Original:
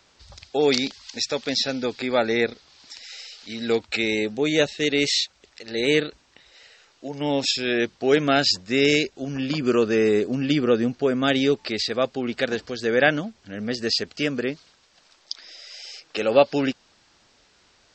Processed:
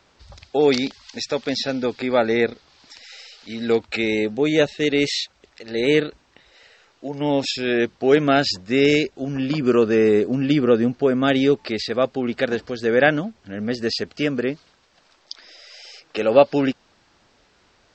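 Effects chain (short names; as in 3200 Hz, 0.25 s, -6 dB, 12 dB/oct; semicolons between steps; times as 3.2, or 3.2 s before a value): high shelf 2900 Hz -9 dB; gain +3.5 dB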